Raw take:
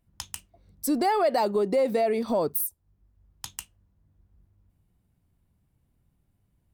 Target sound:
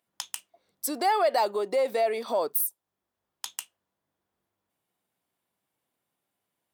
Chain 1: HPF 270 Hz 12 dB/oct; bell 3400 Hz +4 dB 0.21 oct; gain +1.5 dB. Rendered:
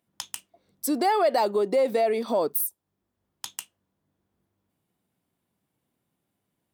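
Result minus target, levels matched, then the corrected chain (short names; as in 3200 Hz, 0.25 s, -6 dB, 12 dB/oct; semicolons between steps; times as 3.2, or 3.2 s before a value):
250 Hz band +5.5 dB
HPF 540 Hz 12 dB/oct; bell 3400 Hz +4 dB 0.21 oct; gain +1.5 dB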